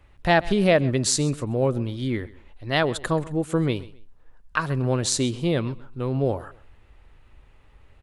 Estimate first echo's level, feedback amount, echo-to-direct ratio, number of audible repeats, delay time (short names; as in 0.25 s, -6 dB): -20.0 dB, 27%, -19.5 dB, 2, 0.131 s